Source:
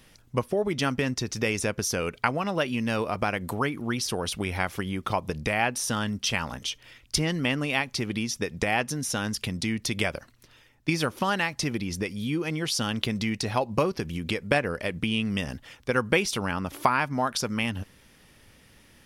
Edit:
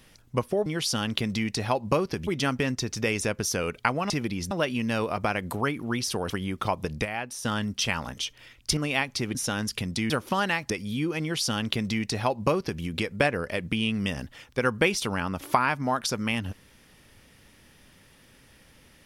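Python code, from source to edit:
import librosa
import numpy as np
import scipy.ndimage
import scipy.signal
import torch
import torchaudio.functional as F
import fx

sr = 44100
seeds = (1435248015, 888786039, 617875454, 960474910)

y = fx.edit(x, sr, fx.cut(start_s=4.28, length_s=0.47),
    fx.clip_gain(start_s=5.5, length_s=0.4, db=-7.5),
    fx.cut(start_s=7.22, length_s=0.34),
    fx.cut(start_s=8.14, length_s=0.87),
    fx.cut(start_s=9.76, length_s=1.24),
    fx.move(start_s=11.6, length_s=0.41, to_s=2.49),
    fx.duplicate(start_s=12.52, length_s=1.61, to_s=0.66), tone=tone)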